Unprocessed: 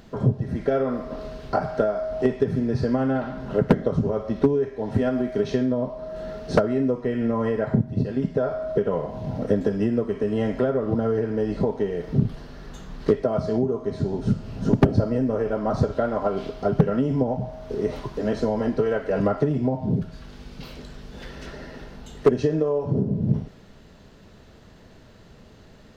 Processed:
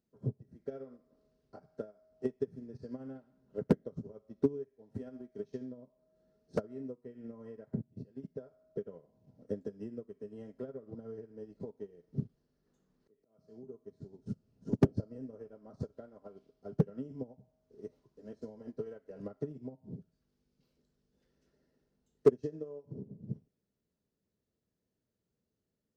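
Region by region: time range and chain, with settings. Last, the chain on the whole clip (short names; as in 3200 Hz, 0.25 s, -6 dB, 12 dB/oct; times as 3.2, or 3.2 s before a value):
12.66–13.67 bell 71 Hz -6.5 dB 1.6 oct + auto swell 0.299 s + three-band squash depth 40%
whole clip: HPF 120 Hz 6 dB/oct; band shelf 1600 Hz -8.5 dB 2.9 oct; upward expander 2.5:1, over -32 dBFS; gain -4 dB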